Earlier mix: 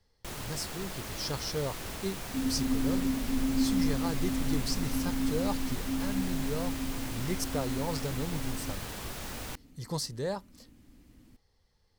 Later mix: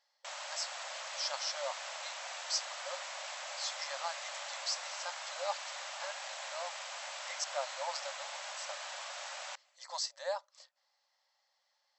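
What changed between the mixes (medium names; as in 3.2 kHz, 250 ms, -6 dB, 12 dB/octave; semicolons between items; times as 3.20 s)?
second sound: entry -1.60 s; master: add brick-wall FIR band-pass 530–8000 Hz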